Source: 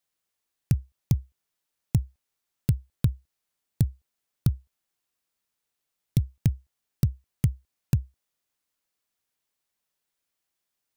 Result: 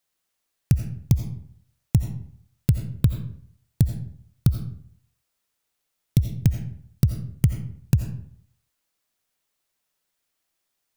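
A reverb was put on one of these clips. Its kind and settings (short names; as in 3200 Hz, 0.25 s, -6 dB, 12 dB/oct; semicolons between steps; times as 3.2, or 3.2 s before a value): digital reverb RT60 0.61 s, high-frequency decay 0.65×, pre-delay 45 ms, DRR 6 dB; gain +4 dB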